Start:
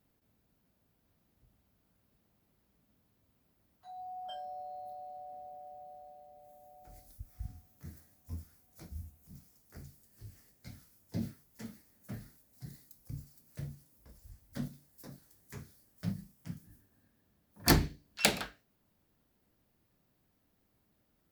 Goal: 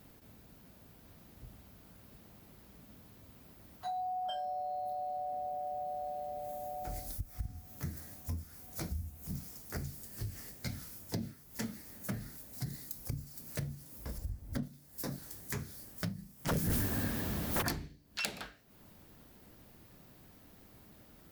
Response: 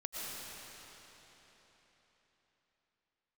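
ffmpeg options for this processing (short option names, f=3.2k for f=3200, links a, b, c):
-filter_complex "[0:a]asettb=1/sr,asplit=3[a][b][c];[a]atrim=end=14.184[d];[b]atrim=start=14.18:end=14.63,asetpts=PTS-STARTPTS,afade=t=in:d=0.004:c=qsin,afade=t=out:st=0.446:d=0.004:c=qsin,tiltshelf=f=870:g=6.5[e];[c]atrim=start=14.626[f];[d][e]acrossfade=d=0.004:c1=hsin:c2=qsin[g];[g][f]acrossfade=d=0.004:c1=qsin:c2=hsin,acompressor=threshold=-52dB:ratio=10,asplit=3[h][i][j];[h]afade=t=out:st=16.47:d=0.02[k];[i]aeval=exprs='0.00631*sin(PI/2*7.08*val(0)/0.00631)':c=same,afade=t=in:st=16.47:d=0.02,afade=t=out:st=17.61:d=0.02[l];[j]afade=t=in:st=17.61:d=0.02[m];[k][l][m]amix=inputs=3:normalize=0,volume=16.5dB"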